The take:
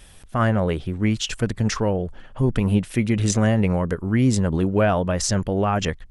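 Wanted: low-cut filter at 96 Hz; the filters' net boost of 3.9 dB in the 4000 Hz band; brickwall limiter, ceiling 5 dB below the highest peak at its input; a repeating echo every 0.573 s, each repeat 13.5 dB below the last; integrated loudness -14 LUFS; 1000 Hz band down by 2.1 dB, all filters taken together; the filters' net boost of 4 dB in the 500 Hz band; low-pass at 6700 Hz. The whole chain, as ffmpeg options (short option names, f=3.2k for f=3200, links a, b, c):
-af "highpass=96,lowpass=6.7k,equalizer=f=500:t=o:g=6.5,equalizer=f=1k:t=o:g=-6.5,equalizer=f=4k:t=o:g=6.5,alimiter=limit=-11dB:level=0:latency=1,aecho=1:1:573|1146:0.211|0.0444,volume=8dB"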